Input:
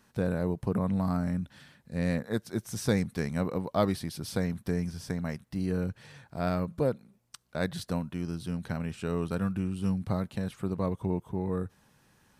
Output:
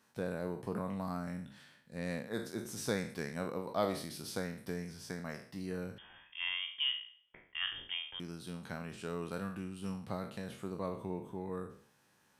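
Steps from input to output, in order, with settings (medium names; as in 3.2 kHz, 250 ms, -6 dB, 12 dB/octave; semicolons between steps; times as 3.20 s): spectral sustain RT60 0.51 s; high-pass 290 Hz 6 dB/octave; 5.98–8.20 s: frequency inversion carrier 3.4 kHz; trim -6 dB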